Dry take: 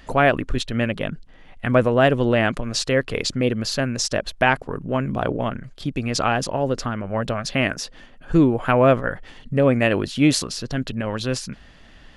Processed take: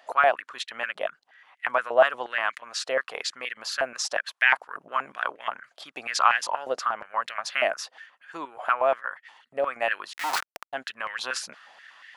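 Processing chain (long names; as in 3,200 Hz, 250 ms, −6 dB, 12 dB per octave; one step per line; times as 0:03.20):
0:10.13–0:10.73: comparator with hysteresis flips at −19.5 dBFS
speech leveller 2 s
high-pass on a step sequencer 8.4 Hz 680–1,900 Hz
level −7 dB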